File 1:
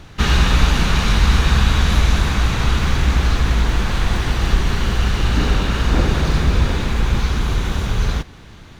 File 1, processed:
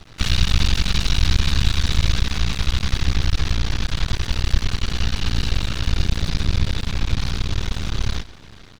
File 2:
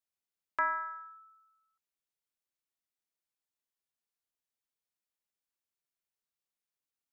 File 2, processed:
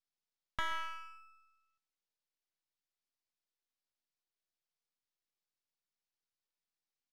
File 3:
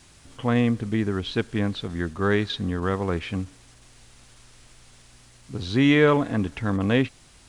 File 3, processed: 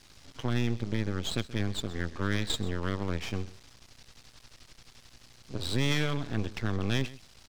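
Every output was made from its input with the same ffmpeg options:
-filter_complex "[0:a]lowpass=f=5.1k:t=q:w=1.8,acrossover=split=170|2200[a][b][c];[b]acompressor=threshold=-31dB:ratio=6[d];[a][d][c]amix=inputs=3:normalize=0,aeval=exprs='max(val(0),0)':c=same,aecho=1:1:129:0.119"

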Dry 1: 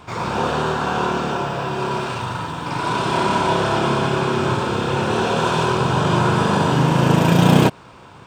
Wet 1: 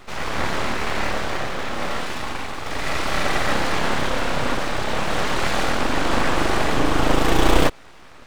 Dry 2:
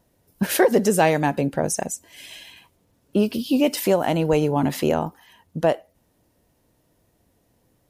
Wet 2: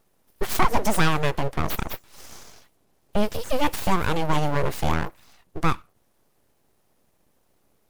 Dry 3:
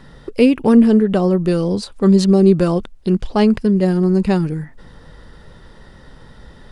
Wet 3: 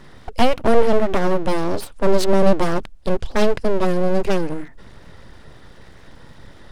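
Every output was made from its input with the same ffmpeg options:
-af "aeval=exprs='abs(val(0))':c=same"

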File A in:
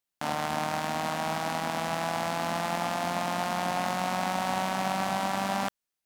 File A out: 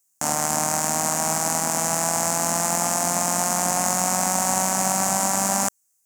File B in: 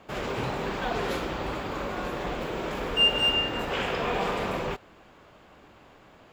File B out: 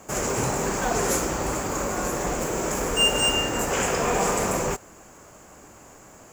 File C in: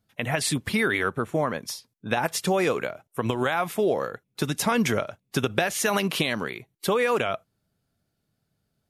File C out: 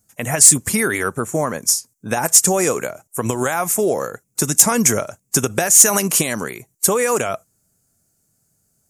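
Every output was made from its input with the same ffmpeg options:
-af "highshelf=f=5.1k:t=q:w=3:g=12.5,aeval=exprs='1.41*sin(PI/2*1.78*val(0)/1.41)':c=same,volume=-4dB"

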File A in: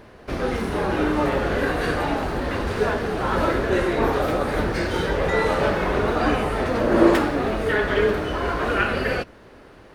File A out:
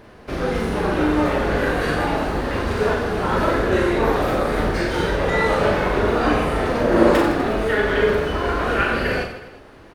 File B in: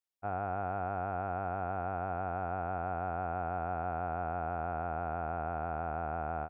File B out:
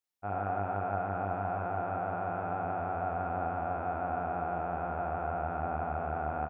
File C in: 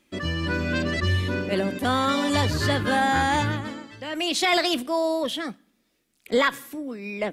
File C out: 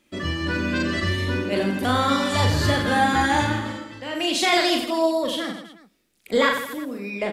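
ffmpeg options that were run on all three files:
-af "aecho=1:1:40|92|159.6|247.5|361.7:0.631|0.398|0.251|0.158|0.1"

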